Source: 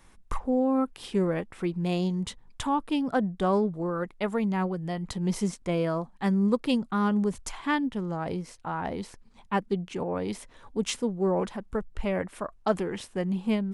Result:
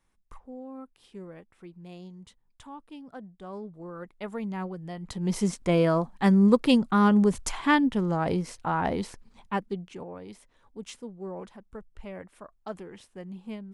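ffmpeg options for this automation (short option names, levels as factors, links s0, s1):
-af "volume=1.78,afade=t=in:st=3.45:d=1.03:silence=0.281838,afade=t=in:st=4.99:d=0.77:silence=0.281838,afade=t=out:st=8.88:d=0.78:silence=0.354813,afade=t=out:st=9.66:d=0.53:silence=0.398107"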